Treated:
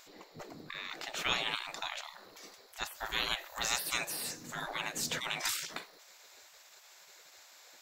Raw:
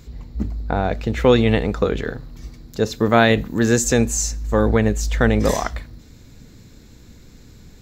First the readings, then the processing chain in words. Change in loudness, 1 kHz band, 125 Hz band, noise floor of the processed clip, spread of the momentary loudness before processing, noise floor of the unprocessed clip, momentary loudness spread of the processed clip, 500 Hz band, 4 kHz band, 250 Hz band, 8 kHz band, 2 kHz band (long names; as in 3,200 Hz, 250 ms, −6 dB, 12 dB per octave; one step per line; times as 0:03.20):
−16.5 dB, −15.5 dB, −32.0 dB, −59 dBFS, 14 LU, −46 dBFS, 22 LU, −28.0 dB, −4.5 dB, −31.0 dB, −12.5 dB, −11.5 dB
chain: gate on every frequency bin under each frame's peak −25 dB weak